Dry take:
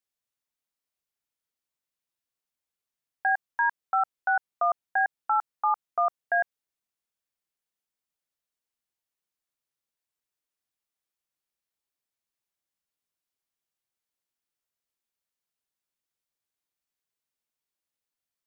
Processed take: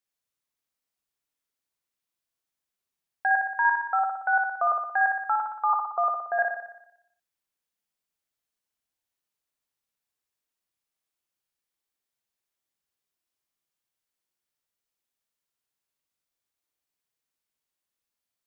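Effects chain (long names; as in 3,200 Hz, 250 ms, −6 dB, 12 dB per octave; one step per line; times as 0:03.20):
0:05.73–0:06.39: Butterworth low-pass 1,400 Hz 36 dB per octave
on a send: flutter between parallel walls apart 10.2 metres, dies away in 0.8 s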